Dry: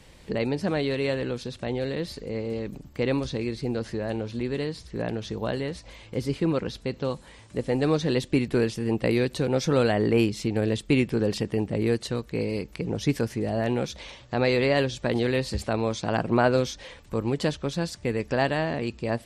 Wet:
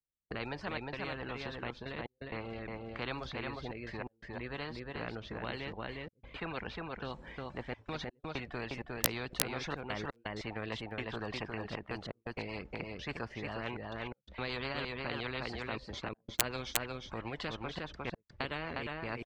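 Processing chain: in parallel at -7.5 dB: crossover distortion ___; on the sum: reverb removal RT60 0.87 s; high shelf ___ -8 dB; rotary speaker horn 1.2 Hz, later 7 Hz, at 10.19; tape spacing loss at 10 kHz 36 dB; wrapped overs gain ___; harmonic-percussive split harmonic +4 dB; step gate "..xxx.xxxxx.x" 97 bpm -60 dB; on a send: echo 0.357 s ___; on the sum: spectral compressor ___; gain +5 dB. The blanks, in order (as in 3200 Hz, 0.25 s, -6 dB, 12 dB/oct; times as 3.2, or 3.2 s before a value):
-49 dBFS, 2700 Hz, 12 dB, -6.5 dB, 4:1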